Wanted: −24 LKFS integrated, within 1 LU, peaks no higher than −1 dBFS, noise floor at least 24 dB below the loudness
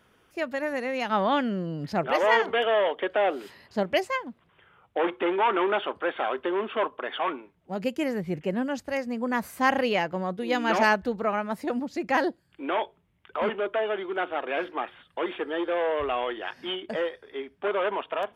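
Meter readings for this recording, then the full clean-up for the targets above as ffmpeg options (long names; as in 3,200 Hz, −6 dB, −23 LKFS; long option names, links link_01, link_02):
integrated loudness −27.5 LKFS; sample peak −10.0 dBFS; target loudness −24.0 LKFS
→ -af "volume=3.5dB"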